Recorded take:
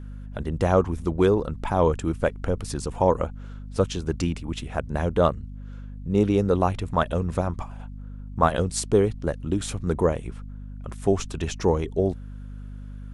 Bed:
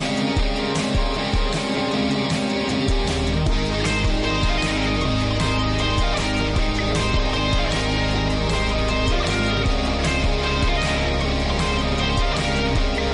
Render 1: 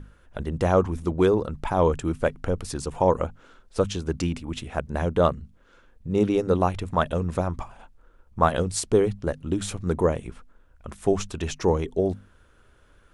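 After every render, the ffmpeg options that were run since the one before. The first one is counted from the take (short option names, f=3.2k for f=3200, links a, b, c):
-af "bandreject=f=50:t=h:w=6,bandreject=f=100:t=h:w=6,bandreject=f=150:t=h:w=6,bandreject=f=200:t=h:w=6,bandreject=f=250:t=h:w=6"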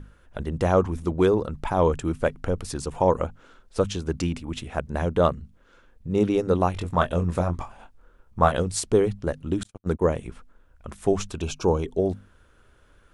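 -filter_complex "[0:a]asettb=1/sr,asplit=3[a][b][c];[a]atrim=end=6.744[d];[b]atrim=start=6.74:end=8.52,asetpts=PTS-STARTPTS,afade=t=in:d=0.004:c=qsin,afade=t=out:st=1.776:d=0.004:c=qsin,asplit=2[e][f];[f]adelay=23,volume=-6.5dB[g];[e][g]amix=inputs=2:normalize=0,atrim=end_sample=78498[h];[c]atrim=start=8.516[i];[d][h]acrossfade=d=0.004:c1=hsin:c2=qsin[j];[j][i]acrossfade=d=0.004:c1=qsin:c2=hsin,asettb=1/sr,asplit=3[k][l][m];[k]atrim=end=9.634[n];[l]atrim=start=9.63:end=10.14,asetpts=PTS-STARTPTS,afade=t=in:d=0.004:c=qsin,afade=t=out:st=0.506:d=0.004:c=qsin,agate=range=-50dB:threshold=-29dB:ratio=16:release=100:detection=peak[o];[m]atrim=start=10.136[p];[n][o]acrossfade=d=0.004:c1=hsin:c2=qsin[q];[q][p]acrossfade=d=0.004:c1=qsin:c2=hsin,asplit=3[r][s][t];[r]afade=t=out:st=11.4:d=0.02[u];[s]asuperstop=centerf=1900:order=20:qfactor=3.3,afade=t=in:st=11.4:d=0.02,afade=t=out:st=11.82:d=0.02[v];[t]afade=t=in:st=11.82:d=0.02[w];[u][v][w]amix=inputs=3:normalize=0"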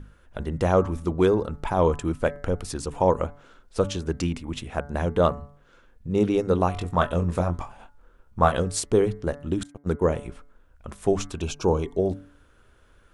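-af "bandreject=f=143.7:t=h:w=4,bandreject=f=287.4:t=h:w=4,bandreject=f=431.1:t=h:w=4,bandreject=f=574.8:t=h:w=4,bandreject=f=718.5:t=h:w=4,bandreject=f=862.2:t=h:w=4,bandreject=f=1.0059k:t=h:w=4,bandreject=f=1.1496k:t=h:w=4,bandreject=f=1.2933k:t=h:w=4,bandreject=f=1.437k:t=h:w=4,bandreject=f=1.5807k:t=h:w=4,bandreject=f=1.7244k:t=h:w=4,bandreject=f=1.8681k:t=h:w=4,bandreject=f=2.0118k:t=h:w=4,bandreject=f=2.1555k:t=h:w=4"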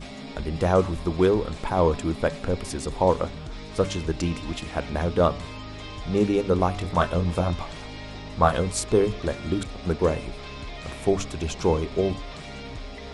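-filter_complex "[1:a]volume=-17dB[a];[0:a][a]amix=inputs=2:normalize=0"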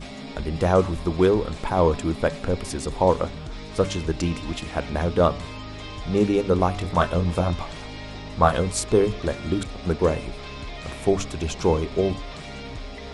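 -af "volume=1.5dB"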